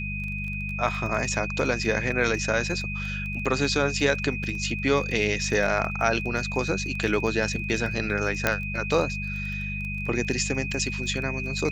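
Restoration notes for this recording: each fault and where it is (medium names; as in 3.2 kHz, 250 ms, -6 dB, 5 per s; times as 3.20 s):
crackle 16 per s -32 dBFS
hum 50 Hz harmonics 4 -33 dBFS
whine 2.5 kHz -32 dBFS
8.47 s: pop -5 dBFS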